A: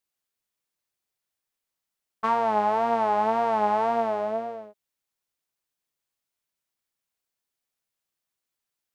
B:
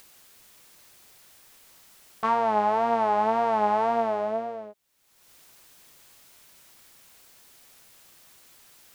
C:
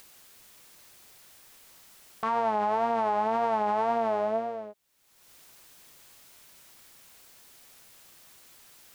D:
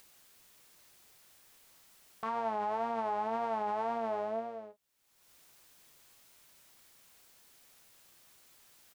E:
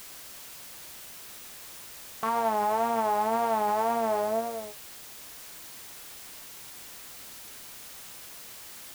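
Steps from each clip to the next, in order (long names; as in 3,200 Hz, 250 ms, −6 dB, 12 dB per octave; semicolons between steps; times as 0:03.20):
upward compression, threshold −30 dBFS
brickwall limiter −18 dBFS, peak gain reduction 6 dB
double-tracking delay 31 ms −13 dB; level −7.5 dB
background noise white −53 dBFS; level +7.5 dB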